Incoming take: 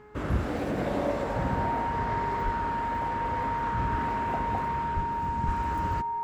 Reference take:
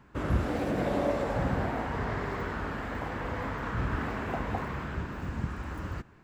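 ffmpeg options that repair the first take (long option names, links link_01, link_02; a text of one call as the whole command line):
ffmpeg -i in.wav -filter_complex "[0:a]bandreject=frequency=421.4:width_type=h:width=4,bandreject=frequency=842.8:width_type=h:width=4,bandreject=frequency=1264.2:width_type=h:width=4,bandreject=frequency=1685.6:width_type=h:width=4,bandreject=frequency=2107:width_type=h:width=4,bandreject=frequency=930:width=30,asplit=3[link_01][link_02][link_03];[link_01]afade=type=out:start_time=2.44:duration=0.02[link_04];[link_02]highpass=frequency=140:width=0.5412,highpass=frequency=140:width=1.3066,afade=type=in:start_time=2.44:duration=0.02,afade=type=out:start_time=2.56:duration=0.02[link_05];[link_03]afade=type=in:start_time=2.56:duration=0.02[link_06];[link_04][link_05][link_06]amix=inputs=3:normalize=0,asplit=3[link_07][link_08][link_09];[link_07]afade=type=out:start_time=4.95:duration=0.02[link_10];[link_08]highpass=frequency=140:width=0.5412,highpass=frequency=140:width=1.3066,afade=type=in:start_time=4.95:duration=0.02,afade=type=out:start_time=5.07:duration=0.02[link_11];[link_09]afade=type=in:start_time=5.07:duration=0.02[link_12];[link_10][link_11][link_12]amix=inputs=3:normalize=0,asplit=3[link_13][link_14][link_15];[link_13]afade=type=out:start_time=5.45:duration=0.02[link_16];[link_14]highpass=frequency=140:width=0.5412,highpass=frequency=140:width=1.3066,afade=type=in:start_time=5.45:duration=0.02,afade=type=out:start_time=5.57:duration=0.02[link_17];[link_15]afade=type=in:start_time=5.57:duration=0.02[link_18];[link_16][link_17][link_18]amix=inputs=3:normalize=0,asetnsamples=nb_out_samples=441:pad=0,asendcmd='5.47 volume volume -4dB',volume=0dB" out.wav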